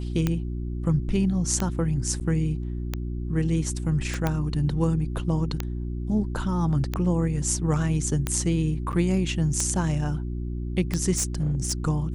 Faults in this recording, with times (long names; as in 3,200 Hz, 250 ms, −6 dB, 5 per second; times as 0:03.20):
mains hum 60 Hz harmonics 6 −30 dBFS
scratch tick 45 rpm −11 dBFS
0:02.20–0:02.21: drop-out 7.6 ms
0:04.14: click −16 dBFS
0:08.92–0:08.93: drop-out 8.7 ms
0:11.13–0:11.73: clipping −20 dBFS